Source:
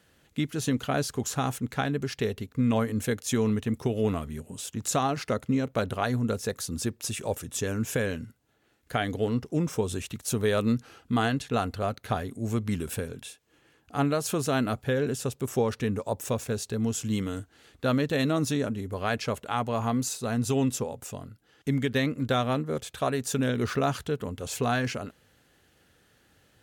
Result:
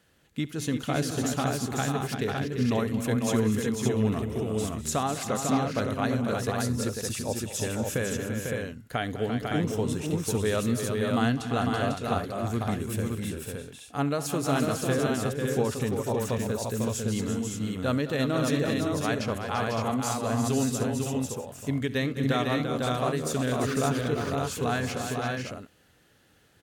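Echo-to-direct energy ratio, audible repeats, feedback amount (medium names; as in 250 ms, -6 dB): -0.5 dB, 6, no regular repeats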